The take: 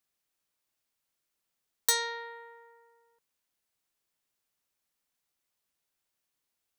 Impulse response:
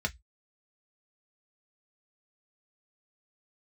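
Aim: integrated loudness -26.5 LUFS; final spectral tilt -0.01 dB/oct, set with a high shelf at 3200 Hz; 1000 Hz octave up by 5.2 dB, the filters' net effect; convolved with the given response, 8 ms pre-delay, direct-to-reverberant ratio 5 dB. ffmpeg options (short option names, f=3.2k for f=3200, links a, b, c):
-filter_complex "[0:a]equalizer=f=1k:t=o:g=5,highshelf=f=3.2k:g=8.5,asplit=2[a][b];[1:a]atrim=start_sample=2205,adelay=8[c];[b][c]afir=irnorm=-1:irlink=0,volume=-10.5dB[d];[a][d]amix=inputs=2:normalize=0,volume=-5dB"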